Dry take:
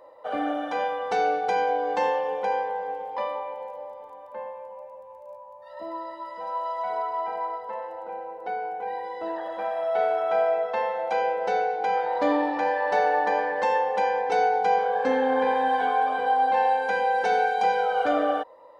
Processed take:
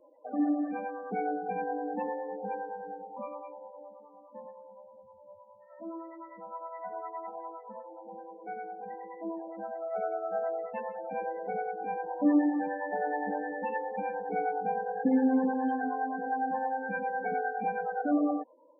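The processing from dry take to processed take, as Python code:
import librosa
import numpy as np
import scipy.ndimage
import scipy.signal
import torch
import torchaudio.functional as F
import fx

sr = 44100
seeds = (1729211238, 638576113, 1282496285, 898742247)

y = fx.graphic_eq_10(x, sr, hz=(125, 250, 500, 1000, 2000, 4000), db=(3, 8, -9, -10, -3, -12))
y = fx.spec_topn(y, sr, count=16)
y = fx.harmonic_tremolo(y, sr, hz=9.7, depth_pct=70, crossover_hz=480.0)
y = y * librosa.db_to_amplitude(3.5)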